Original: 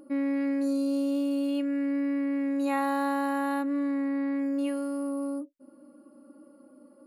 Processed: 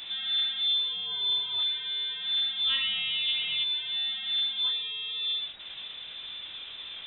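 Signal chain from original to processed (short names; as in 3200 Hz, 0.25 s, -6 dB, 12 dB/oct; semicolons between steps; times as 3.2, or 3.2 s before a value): zero-crossing step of -33.5 dBFS; chorus 0.5 Hz, delay 19 ms, depth 7.8 ms; inverted band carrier 3800 Hz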